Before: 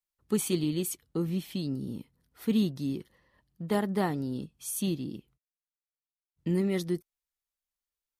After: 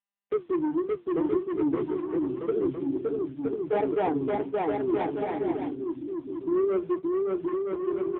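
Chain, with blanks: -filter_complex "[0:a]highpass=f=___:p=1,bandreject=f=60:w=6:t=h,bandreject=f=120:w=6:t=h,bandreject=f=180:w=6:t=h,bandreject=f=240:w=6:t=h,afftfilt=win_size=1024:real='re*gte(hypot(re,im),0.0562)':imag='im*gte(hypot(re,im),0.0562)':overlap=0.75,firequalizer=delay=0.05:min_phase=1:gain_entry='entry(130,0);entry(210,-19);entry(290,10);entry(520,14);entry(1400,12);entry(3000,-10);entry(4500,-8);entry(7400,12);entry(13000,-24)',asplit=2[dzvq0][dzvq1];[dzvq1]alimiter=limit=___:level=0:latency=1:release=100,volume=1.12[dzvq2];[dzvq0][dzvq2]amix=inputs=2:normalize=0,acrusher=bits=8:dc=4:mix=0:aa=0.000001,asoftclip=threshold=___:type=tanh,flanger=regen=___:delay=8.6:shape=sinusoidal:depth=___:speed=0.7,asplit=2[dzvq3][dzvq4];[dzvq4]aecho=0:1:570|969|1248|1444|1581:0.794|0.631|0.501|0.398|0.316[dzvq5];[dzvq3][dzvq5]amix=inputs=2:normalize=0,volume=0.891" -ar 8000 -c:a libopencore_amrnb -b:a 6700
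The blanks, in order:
130, 0.211, 0.15, -68, 9.7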